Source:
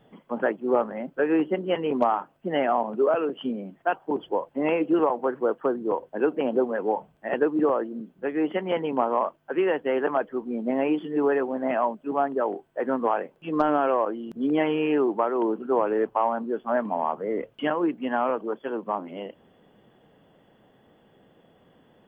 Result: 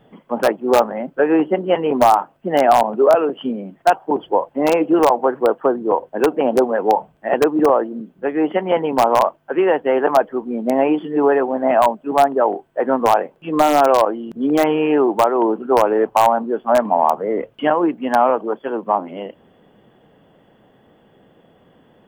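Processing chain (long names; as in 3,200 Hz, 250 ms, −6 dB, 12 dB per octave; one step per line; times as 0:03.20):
high-shelf EQ 2,700 Hz −2.5 dB
in parallel at −4.5 dB: wrap-around overflow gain 13 dB
on the sum: dynamic equaliser 770 Hz, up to +7 dB, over −33 dBFS, Q 1.5
level +2 dB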